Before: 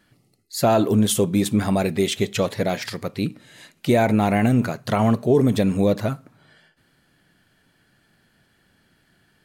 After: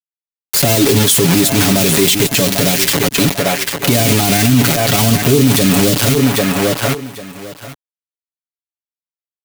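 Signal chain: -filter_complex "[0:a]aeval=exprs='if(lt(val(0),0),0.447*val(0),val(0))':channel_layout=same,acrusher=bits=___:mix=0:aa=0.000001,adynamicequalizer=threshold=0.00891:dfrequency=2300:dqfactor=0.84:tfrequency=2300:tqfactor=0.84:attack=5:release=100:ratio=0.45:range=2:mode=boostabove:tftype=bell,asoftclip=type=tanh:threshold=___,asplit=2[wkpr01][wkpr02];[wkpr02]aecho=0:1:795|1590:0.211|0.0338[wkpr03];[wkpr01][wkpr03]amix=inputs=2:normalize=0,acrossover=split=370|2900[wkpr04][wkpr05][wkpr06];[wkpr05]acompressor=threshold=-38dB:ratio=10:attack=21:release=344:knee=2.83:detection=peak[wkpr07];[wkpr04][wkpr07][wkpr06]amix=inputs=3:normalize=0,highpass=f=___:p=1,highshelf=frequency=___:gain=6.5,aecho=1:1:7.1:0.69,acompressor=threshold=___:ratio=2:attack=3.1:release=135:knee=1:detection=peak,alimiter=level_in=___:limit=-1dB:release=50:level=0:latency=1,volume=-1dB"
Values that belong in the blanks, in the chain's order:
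4, -18dB, 120, 8700, -28dB, 25.5dB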